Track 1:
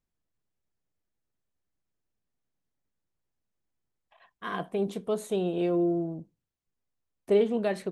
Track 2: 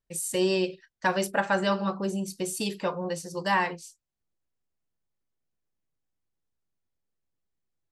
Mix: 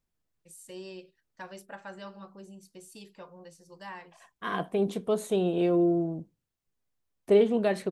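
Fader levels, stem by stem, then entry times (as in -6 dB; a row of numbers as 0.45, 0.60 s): +2.0, -18.0 dB; 0.00, 0.35 s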